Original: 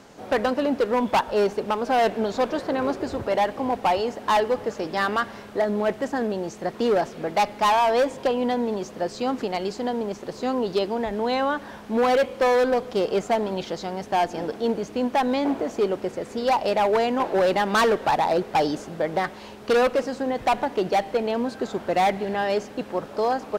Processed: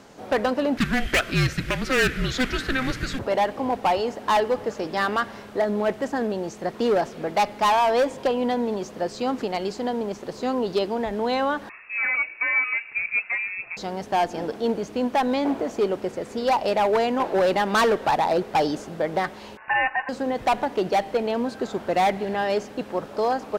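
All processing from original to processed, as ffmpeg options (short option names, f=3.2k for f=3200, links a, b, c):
-filter_complex "[0:a]asettb=1/sr,asplit=3[a][b][c];[a]atrim=end=0.774[d];[b]atrim=start=0.77:end=3.19,asetpts=PTS-STARTPTS,afade=t=in:d=0.004:c=qsin,afade=t=out:st=2.416:d=0.004:c=qsin,highshelf=f=1.5k:t=q:w=3:g=8.5,volume=15.5dB,asoftclip=hard,volume=-15.5dB,afreqshift=-260[e];[c]atrim=start=3.186[f];[d][e]acrossfade=d=0.004:c1=hsin:c2=qsin[g];[g][f]acrossfade=d=0.004:c1=qsin:c2=hsin,asettb=1/sr,asplit=3[h][i][j];[h]atrim=end=11.694[k];[i]atrim=start=11.69:end=13.77,asetpts=PTS-STARTPTS,afade=t=in:d=0.004:c=qsin,afade=t=out:st=2.076:d=0.004:c=qsin,flanger=delay=5.1:depth=2.1:regen=54:speed=2:shape=sinusoidal,lowpass=f=2.4k:t=q:w=0.5098,lowpass=f=2.4k:t=q:w=0.6013,lowpass=f=2.4k:t=q:w=0.9,lowpass=f=2.4k:t=q:w=2.563,afreqshift=-2800[l];[j]atrim=start=13.766[m];[k][l]acrossfade=d=0.004:c1=hsin:c2=qsin[n];[n][m]acrossfade=d=0.004:c1=qsin:c2=hsin,asettb=1/sr,asplit=3[o][p][q];[o]atrim=end=19.574[r];[p]atrim=start=19.57:end=20.09,asetpts=PTS-STARTPTS,afade=t=in:d=0.004:c=qsin,afade=t=out:st=0.516:d=0.004:c=qsin,aeval=exprs='val(0)*sin(2*PI*1600*n/s)':c=same,lowpass=f=2.5k:t=q:w=0.5098,lowpass=f=2.5k:t=q:w=0.6013,lowpass=f=2.5k:t=q:w=0.9,lowpass=f=2.5k:t=q:w=2.563,afreqshift=-2900[s];[q]atrim=start=20.086[t];[r][s]acrossfade=d=0.004:c1=hsin:c2=qsin[u];[u][t]acrossfade=d=0.004:c1=qsin:c2=hsin"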